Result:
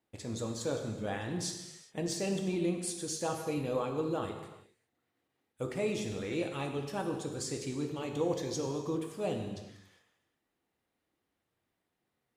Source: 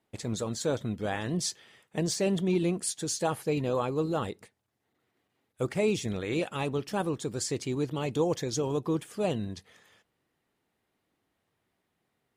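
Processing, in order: non-linear reverb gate 0.43 s falling, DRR 3 dB; gain -6.5 dB

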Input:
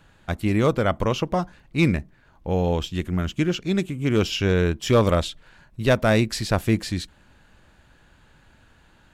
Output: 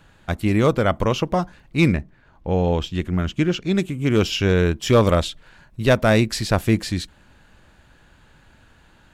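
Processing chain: 1.92–3.75 high shelf 5800 Hz -> 10000 Hz -10.5 dB; gain +2.5 dB

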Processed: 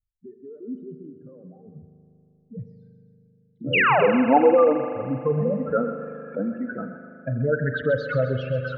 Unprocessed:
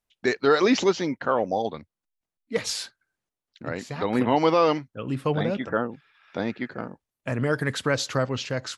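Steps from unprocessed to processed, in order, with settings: spectral contrast raised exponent 3.1; low-pass sweep 110 Hz -> 1500 Hz, 2.31–5.13; 3.73–4 painted sound fall 520–3000 Hz -21 dBFS; 2.8–4.16 doubler 45 ms -5 dB; on a send: thinning echo 0.131 s, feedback 61%, high-pass 1100 Hz, level -8.5 dB; on the sum: spring tank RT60 3.1 s, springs 39 ms, chirp 40 ms, DRR 8 dB; gain +1.5 dB

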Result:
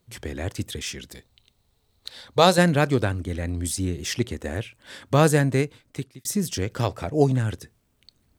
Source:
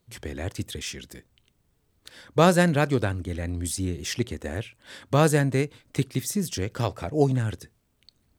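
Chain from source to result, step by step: 1.12–2.58 thirty-one-band EQ 160 Hz -9 dB, 315 Hz -9 dB, 800 Hz +4 dB, 1600 Hz -4 dB, 4000 Hz +12 dB; 5.6–6.25 fade out; gain +2 dB

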